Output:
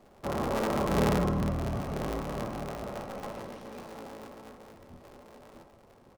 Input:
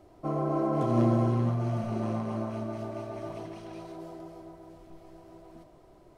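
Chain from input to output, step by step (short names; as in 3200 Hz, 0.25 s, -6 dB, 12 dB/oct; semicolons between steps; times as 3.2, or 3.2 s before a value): cycle switcher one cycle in 3, inverted; on a send: comb 3.7 ms, depth 97% + reverb RT60 0.65 s, pre-delay 3 ms, DRR 5.5 dB; on the sum: gain -2.5 dB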